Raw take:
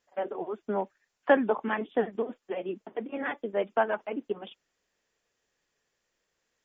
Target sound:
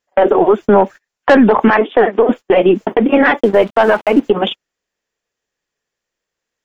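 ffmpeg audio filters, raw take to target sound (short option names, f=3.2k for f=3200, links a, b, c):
-filter_complex "[0:a]agate=range=-28dB:threshold=-46dB:ratio=16:detection=peak,asettb=1/sr,asplit=3[a][b][c];[a]atrim=end=1.704[d];[b]atrim=start=1.7:end=2.29,asetpts=PTS-STARTPTS,afade=t=in:d=0.004:c=qsin,afade=t=out:st=0.586:d=0.004:c=qsin,highpass=400,lowpass=2.6k[e];[c]atrim=start=2.286[f];[d][e]acrossfade=d=0.004:c1=hsin:c2=qsin[g];[g][f]acrossfade=d=0.004:c1=qsin:c2=hsin,asplit=3[h][i][j];[h]afade=t=out:st=3.39:d=0.02[k];[i]aeval=exprs='sgn(val(0))*max(abs(val(0))-0.0015,0)':c=same,afade=t=in:st=3.39:d=0.02,afade=t=out:st=4.21:d=0.02[l];[j]afade=t=in:st=4.21:d=0.02[m];[k][l][m]amix=inputs=3:normalize=0,aeval=exprs='0.376*(cos(1*acos(clip(val(0)/0.376,-1,1)))-cos(1*PI/2))+0.0168*(cos(6*acos(clip(val(0)/0.376,-1,1)))-cos(6*PI/2))':c=same,asoftclip=type=tanh:threshold=-16dB,alimiter=level_in=28dB:limit=-1dB:release=50:level=0:latency=1,volume=-1dB"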